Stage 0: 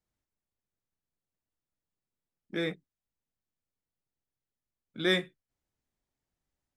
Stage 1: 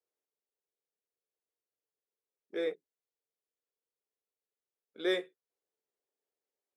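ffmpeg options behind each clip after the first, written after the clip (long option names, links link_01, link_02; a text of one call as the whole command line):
ffmpeg -i in.wav -af "highpass=frequency=440:width_type=q:width=4.9,volume=-8dB" out.wav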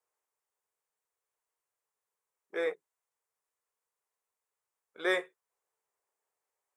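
ffmpeg -i in.wav -af "equalizer=frequency=250:width_type=o:width=1:gain=-10,equalizer=frequency=1000:width_type=o:width=1:gain=12,equalizer=frequency=2000:width_type=o:width=1:gain=4,equalizer=frequency=4000:width_type=o:width=1:gain=-6,equalizer=frequency=8000:width_type=o:width=1:gain=7,volume=1dB" out.wav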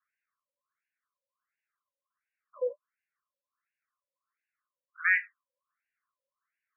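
ffmpeg -i in.wav -af "asuperstop=centerf=770:order=20:qfactor=1.8,afftfilt=real='re*between(b*sr/1024,690*pow(2100/690,0.5+0.5*sin(2*PI*1.4*pts/sr))/1.41,690*pow(2100/690,0.5+0.5*sin(2*PI*1.4*pts/sr))*1.41)':imag='im*between(b*sr/1024,690*pow(2100/690,0.5+0.5*sin(2*PI*1.4*pts/sr))/1.41,690*pow(2100/690,0.5+0.5*sin(2*PI*1.4*pts/sr))*1.41)':win_size=1024:overlap=0.75,volume=8.5dB" out.wav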